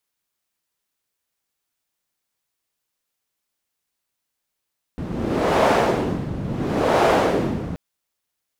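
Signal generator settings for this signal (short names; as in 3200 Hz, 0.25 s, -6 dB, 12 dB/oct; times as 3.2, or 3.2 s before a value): wind-like swept noise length 2.78 s, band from 160 Hz, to 660 Hz, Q 1.2, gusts 2, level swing 10.5 dB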